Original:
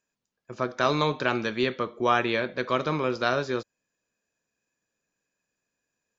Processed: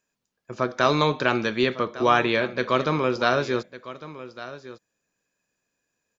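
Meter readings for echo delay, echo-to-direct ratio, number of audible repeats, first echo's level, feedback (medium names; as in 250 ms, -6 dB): 1154 ms, -15.5 dB, 1, -15.5 dB, no regular repeats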